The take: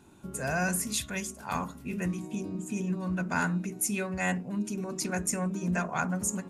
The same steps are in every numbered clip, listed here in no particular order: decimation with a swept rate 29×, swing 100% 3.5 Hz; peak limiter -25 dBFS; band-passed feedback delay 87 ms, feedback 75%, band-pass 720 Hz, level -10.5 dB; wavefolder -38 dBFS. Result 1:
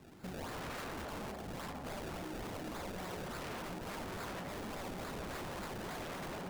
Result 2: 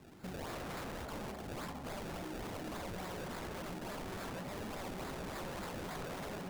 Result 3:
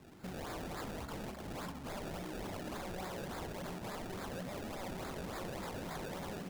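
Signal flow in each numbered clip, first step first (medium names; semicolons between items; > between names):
decimation with a swept rate > band-passed feedback delay > wavefolder > peak limiter; peak limiter > decimation with a swept rate > band-passed feedback delay > wavefolder; decimation with a swept rate > peak limiter > wavefolder > band-passed feedback delay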